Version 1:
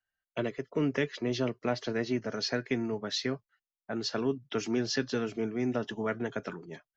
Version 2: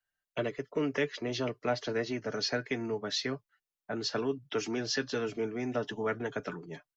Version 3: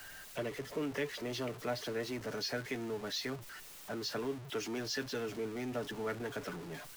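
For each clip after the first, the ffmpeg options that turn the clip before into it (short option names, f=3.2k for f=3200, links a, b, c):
-filter_complex "[0:a]aecho=1:1:6.8:0.31,acrossover=split=340|1000[a][b][c];[a]alimiter=level_in=8dB:limit=-24dB:level=0:latency=1:release=160,volume=-8dB[d];[d][b][c]amix=inputs=3:normalize=0"
-af "aeval=exprs='val(0)+0.5*0.0178*sgn(val(0))':c=same,volume=-7.5dB"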